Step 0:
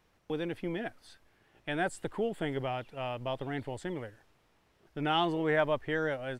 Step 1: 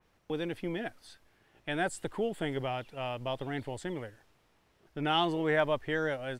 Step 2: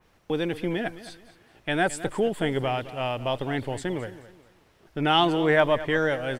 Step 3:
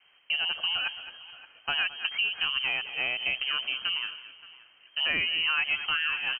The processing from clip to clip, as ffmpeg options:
ffmpeg -i in.wav -af "adynamicequalizer=threshold=0.00447:dfrequency=3000:dqfactor=0.7:tfrequency=3000:tqfactor=0.7:attack=5:release=100:ratio=0.375:range=2:mode=boostabove:tftype=highshelf" out.wav
ffmpeg -i in.wav -af "aecho=1:1:215|430|645:0.168|0.0554|0.0183,volume=7.5dB" out.wav
ffmpeg -i in.wav -filter_complex "[0:a]lowpass=frequency=2700:width_type=q:width=0.5098,lowpass=frequency=2700:width_type=q:width=0.6013,lowpass=frequency=2700:width_type=q:width=0.9,lowpass=frequency=2700:width_type=q:width=2.563,afreqshift=-3200,asplit=2[link_01][link_02];[link_02]adelay=571.4,volume=-18dB,highshelf=frequency=4000:gain=-12.9[link_03];[link_01][link_03]amix=inputs=2:normalize=0,acompressor=threshold=-25dB:ratio=4" out.wav

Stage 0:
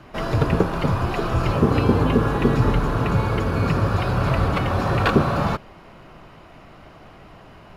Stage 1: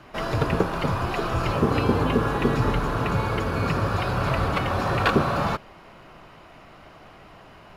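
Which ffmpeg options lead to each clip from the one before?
ffmpeg -i in.wav -af "lowshelf=frequency=420:gain=-5.5" out.wav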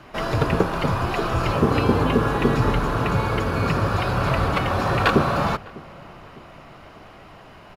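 ffmpeg -i in.wav -filter_complex "[0:a]asplit=2[link_01][link_02];[link_02]adelay=602,lowpass=frequency=1700:poles=1,volume=-22.5dB,asplit=2[link_03][link_04];[link_04]adelay=602,lowpass=frequency=1700:poles=1,volume=0.53,asplit=2[link_05][link_06];[link_06]adelay=602,lowpass=frequency=1700:poles=1,volume=0.53,asplit=2[link_07][link_08];[link_08]adelay=602,lowpass=frequency=1700:poles=1,volume=0.53[link_09];[link_01][link_03][link_05][link_07][link_09]amix=inputs=5:normalize=0,volume=2.5dB" out.wav

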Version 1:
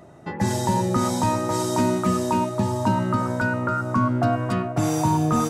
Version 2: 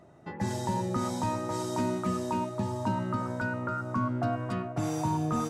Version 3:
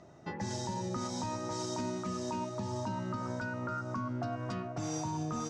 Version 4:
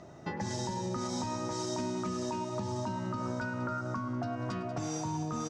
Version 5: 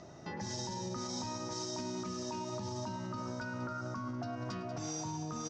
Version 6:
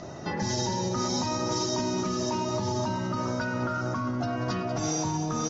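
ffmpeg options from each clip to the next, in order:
ffmpeg -i in.wav -af "highshelf=frequency=9300:gain=-7,volume=-8.5dB" out.wav
ffmpeg -i in.wav -af "alimiter=level_in=4dB:limit=-24dB:level=0:latency=1:release=276,volume=-4dB,lowpass=frequency=5900:width_type=q:width=2.9" out.wav
ffmpeg -i in.wav -filter_complex "[0:a]acompressor=threshold=-37dB:ratio=6,asplit=2[link_01][link_02];[link_02]aecho=0:1:105|189:0.126|0.237[link_03];[link_01][link_03]amix=inputs=2:normalize=0,volume=5dB" out.wav
ffmpeg -i in.wav -af "alimiter=level_in=6.5dB:limit=-24dB:level=0:latency=1:release=81,volume=-6.5dB,lowpass=frequency=5700:width_type=q:width=2.2,volume=-1.5dB" out.wav
ffmpeg -i in.wav -filter_complex "[0:a]asplit=2[link_01][link_02];[link_02]asoftclip=type=tanh:threshold=-39.5dB,volume=-7dB[link_03];[link_01][link_03]amix=inputs=2:normalize=0,volume=7.5dB" -ar 44100 -c:a aac -b:a 24k out.aac

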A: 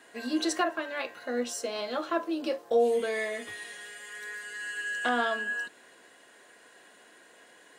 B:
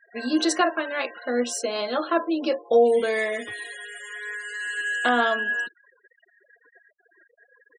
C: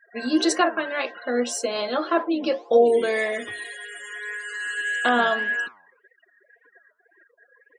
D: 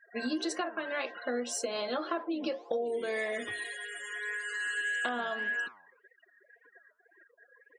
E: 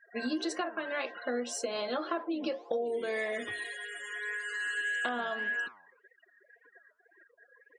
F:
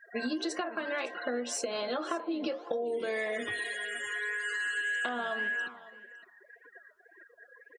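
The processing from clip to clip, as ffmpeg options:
ffmpeg -i in.wav -af "afftfilt=real='re*gte(hypot(re,im),0.00708)':imag='im*gte(hypot(re,im),0.00708)':win_size=1024:overlap=0.75,volume=6.5dB" out.wav
ffmpeg -i in.wav -af "flanger=delay=3.6:depth=8.2:regen=89:speed=1.8:shape=triangular,volume=5.5dB" out.wav
ffmpeg -i in.wav -af "acompressor=threshold=-26dB:ratio=12,volume=-3.5dB" out.wav
ffmpeg -i in.wav -af "highshelf=frequency=8800:gain=-6.5" out.wav
ffmpeg -i in.wav -af "acompressor=threshold=-38dB:ratio=2.5,aecho=1:1:558:0.119,volume=5.5dB" out.wav

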